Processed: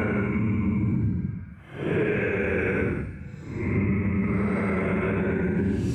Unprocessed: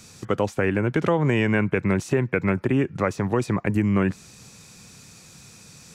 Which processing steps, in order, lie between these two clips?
extreme stretch with random phases 15×, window 0.05 s, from 0:01.60
brickwall limiter −16 dBFS, peak gain reduction 6.5 dB
speech leveller 0.5 s

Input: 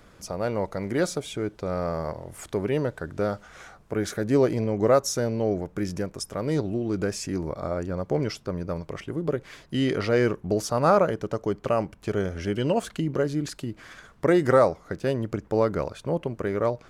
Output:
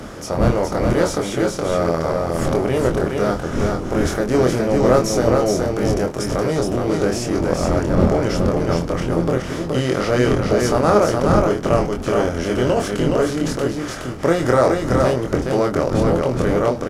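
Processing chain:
compressor on every frequency bin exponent 0.6
wind on the microphone 270 Hz −28 dBFS
double-tracking delay 24 ms −4 dB
single-tap delay 419 ms −3.5 dB

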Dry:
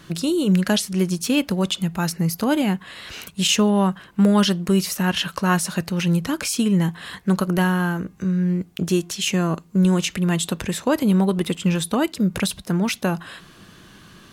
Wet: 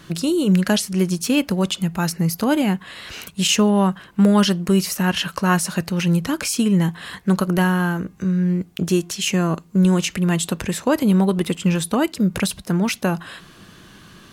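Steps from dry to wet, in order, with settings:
dynamic equaliser 3,600 Hz, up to −4 dB, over −42 dBFS, Q 4.8
level +1.5 dB

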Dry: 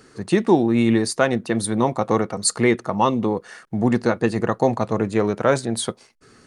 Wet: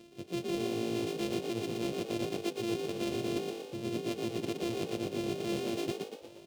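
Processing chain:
samples sorted by size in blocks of 128 samples
low-pass filter 3,500 Hz 6 dB per octave
flat-topped bell 1,200 Hz −14 dB
reversed playback
downward compressor 10 to 1, threshold −31 dBFS, peak gain reduction 19 dB
reversed playback
high-pass filter 160 Hz 6 dB per octave
echo with shifted repeats 118 ms, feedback 49%, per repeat +51 Hz, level −4 dB

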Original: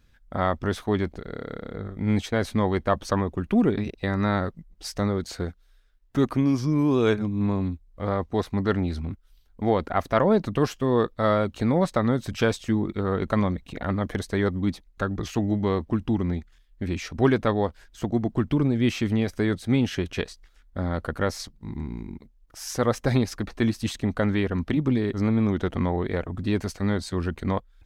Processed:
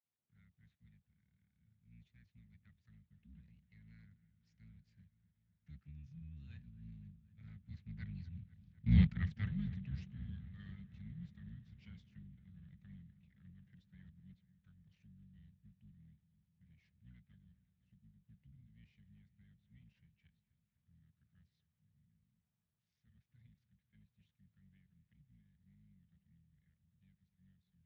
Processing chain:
sub-octave generator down 2 octaves, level +3 dB
source passing by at 0:08.98, 27 m/s, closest 2.3 metres
elliptic band-stop filter 180–1,900 Hz, stop band 40 dB
high-shelf EQ 3,700 Hz −11.5 dB
delay with a low-pass on its return 251 ms, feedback 75%, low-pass 1,800 Hz, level −16 dB
level +2.5 dB
Speex 21 kbit/s 16,000 Hz

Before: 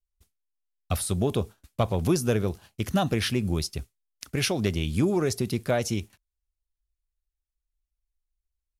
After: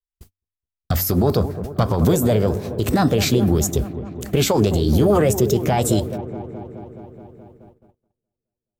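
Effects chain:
in parallel at +2 dB: downward compressor, threshold −31 dBFS, peak gain reduction 12.5 dB
on the sum: brickwall limiter −18 dBFS, peak gain reduction 10 dB
low-shelf EQ 380 Hz +5 dB
hum removal 93.45 Hz, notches 3
on a send: delay with a low-pass on its return 212 ms, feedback 74%, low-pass 900 Hz, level −12.5 dB
on the sum: formants moved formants +5 semitones
noise gate −52 dBFS, range −31 dB
level +6.5 dB

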